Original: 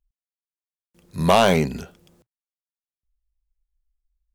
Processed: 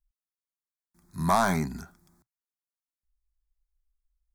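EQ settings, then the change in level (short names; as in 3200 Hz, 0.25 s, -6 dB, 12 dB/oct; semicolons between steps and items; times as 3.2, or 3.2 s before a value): bell 110 Hz -6 dB 1 oct; fixed phaser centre 1200 Hz, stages 4; -2.5 dB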